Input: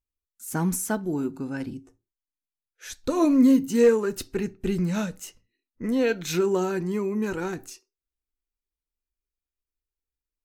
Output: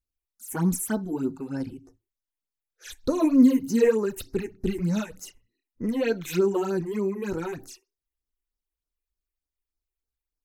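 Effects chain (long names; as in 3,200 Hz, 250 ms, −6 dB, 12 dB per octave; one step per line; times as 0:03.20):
all-pass phaser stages 8, 3.3 Hz, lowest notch 160–3,100 Hz
level +1 dB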